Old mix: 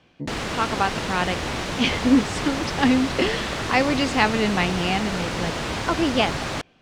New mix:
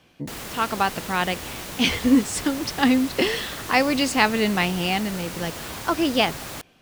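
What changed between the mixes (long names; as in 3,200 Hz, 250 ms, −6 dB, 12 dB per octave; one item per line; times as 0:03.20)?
background −9.0 dB
master: remove high-frequency loss of the air 98 metres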